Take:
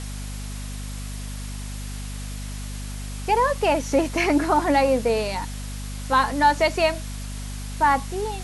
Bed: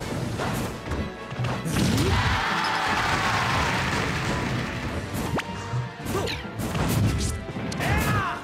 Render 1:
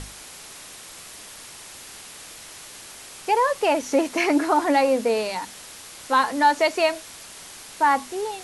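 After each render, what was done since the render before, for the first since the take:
mains-hum notches 50/100/150/200/250 Hz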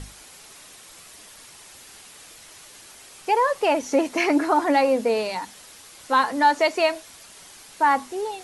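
broadband denoise 6 dB, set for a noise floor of −42 dBFS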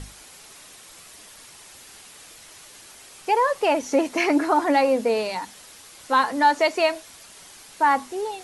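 no processing that can be heard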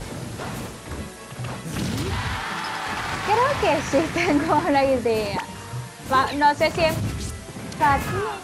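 mix in bed −4 dB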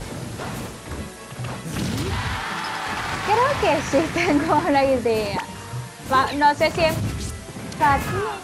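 level +1 dB

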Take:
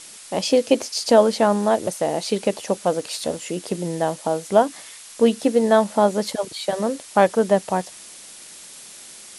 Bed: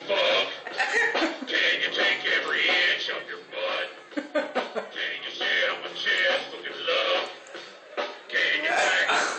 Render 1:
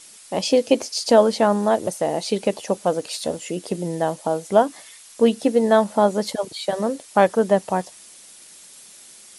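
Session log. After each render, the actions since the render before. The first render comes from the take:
broadband denoise 6 dB, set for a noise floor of −42 dBFS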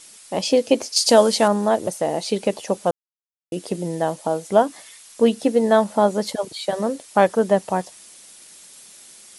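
0:00.96–0:01.48: high-shelf EQ 3,000 Hz +10.5 dB
0:02.91–0:03.52: silence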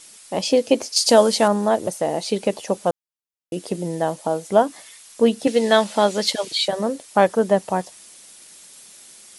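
0:05.47–0:06.68: meter weighting curve D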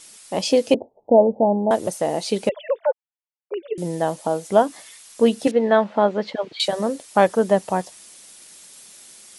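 0:00.74–0:01.71: Butterworth low-pass 880 Hz 72 dB per octave
0:02.49–0:03.78: three sine waves on the formant tracks
0:05.51–0:06.60: low-pass filter 1,600 Hz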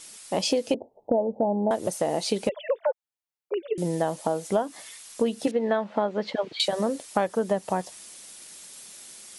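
downward compressor 6 to 1, threshold −21 dBFS, peak gain reduction 12 dB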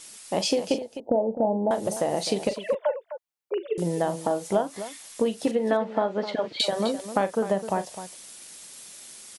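loudspeakers that aren't time-aligned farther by 14 metres −12 dB, 88 metres −12 dB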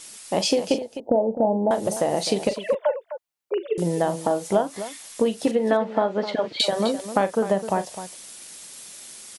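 level +3 dB

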